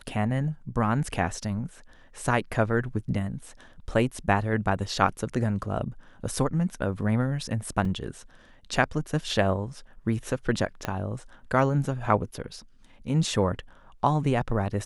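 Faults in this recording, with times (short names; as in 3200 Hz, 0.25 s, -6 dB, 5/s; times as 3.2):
7.85 gap 2.9 ms
10.85 pop -14 dBFS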